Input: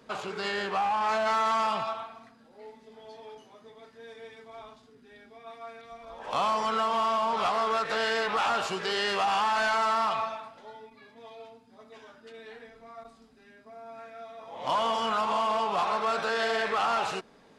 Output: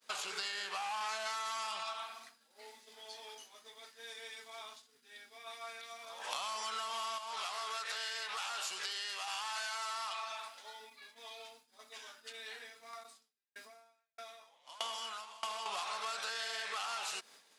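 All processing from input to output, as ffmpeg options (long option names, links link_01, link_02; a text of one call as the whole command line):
ffmpeg -i in.wav -filter_complex "[0:a]asettb=1/sr,asplit=3[link_01][link_02][link_03];[link_01]atrim=end=7.184[link_04];[link_02]atrim=start=7.18:end=10.8,asetpts=PTS-STARTPTS,afade=type=in:duration=0.004:curve=qsin,afade=type=out:start_time=3.616:duration=0.004:curve=qsin,lowshelf=frequency=190:gain=-11.5,acompressor=threshold=-38dB:ratio=2:attack=3.2:release=140:knee=1:detection=peak[link_05];[link_03]atrim=start=10.796[link_06];[link_04][link_05]acrossfade=duration=0.004:curve1=hsin:curve2=qsin[link_07];[link_07][link_06]acrossfade=duration=0.004:curve1=qsin:curve2=hsin,asettb=1/sr,asplit=3[link_08][link_09][link_10];[link_08]atrim=end=12.934[link_11];[link_09]atrim=start=12.93:end=15.66,asetpts=PTS-STARTPTS,afade=type=in:duration=0.004:curve=qsin,afade=type=out:start_time=2.726:duration=0.004:curve=qsin,acompressor=mode=upward:threshold=-37dB:ratio=2.5:attack=3.2:release=140:knee=2.83:detection=peak,aeval=exprs='val(0)*pow(10,-27*if(lt(mod(1.6*n/s,1),2*abs(1.6)/1000),1-mod(1.6*n/s,1)/(2*abs(1.6)/1000),(mod(1.6*n/s,1)-2*abs(1.6)/1000)/(1-2*abs(1.6)/1000))/20)':channel_layout=same[link_12];[link_10]atrim=start=15.656[link_13];[link_11][link_12]acrossfade=duration=0.004:curve1=hsin:curve2=qsin[link_14];[link_14][link_13]acrossfade=duration=0.004:curve1=qsin:curve2=hsin,agate=range=-33dB:threshold=-50dB:ratio=3:detection=peak,aderivative,acompressor=threshold=-50dB:ratio=10,volume=13.5dB" out.wav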